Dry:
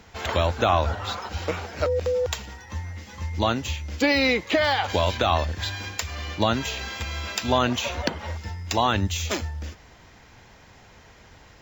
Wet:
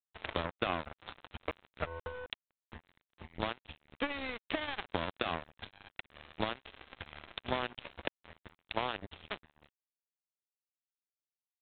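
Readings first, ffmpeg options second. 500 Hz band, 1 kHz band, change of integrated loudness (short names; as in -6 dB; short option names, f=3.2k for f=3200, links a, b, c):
-16.0 dB, -14.5 dB, -14.5 dB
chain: -af "adynamicequalizer=threshold=0.00708:dfrequency=130:dqfactor=1.2:tfrequency=130:tqfactor=1.2:attack=5:release=100:ratio=0.375:range=3:mode=cutabove:tftype=bell,acompressor=threshold=-39dB:ratio=2.5,aeval=exprs='0.126*(cos(1*acos(clip(val(0)/0.126,-1,1)))-cos(1*PI/2))+0.001*(cos(2*acos(clip(val(0)/0.126,-1,1)))-cos(2*PI/2))+0.000794*(cos(5*acos(clip(val(0)/0.126,-1,1)))-cos(5*PI/2))+0.02*(cos(7*acos(clip(val(0)/0.126,-1,1)))-cos(7*PI/2))+0.00178*(cos(8*acos(clip(val(0)/0.126,-1,1)))-cos(8*PI/2))':c=same,aeval=exprs='val(0)+0.0002*(sin(2*PI*50*n/s)+sin(2*PI*2*50*n/s)/2+sin(2*PI*3*50*n/s)/3+sin(2*PI*4*50*n/s)/4+sin(2*PI*5*50*n/s)/5)':c=same,aresample=8000,aeval=exprs='sgn(val(0))*max(abs(val(0))-0.0015,0)':c=same,aresample=44100,volume=4.5dB"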